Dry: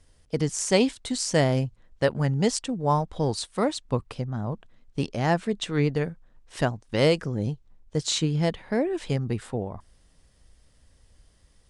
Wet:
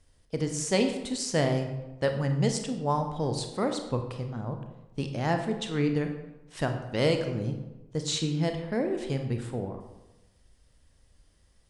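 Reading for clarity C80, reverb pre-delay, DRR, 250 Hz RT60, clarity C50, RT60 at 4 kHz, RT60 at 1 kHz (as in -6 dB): 9.5 dB, 28 ms, 5.5 dB, 1.1 s, 7.5 dB, 0.65 s, 1.0 s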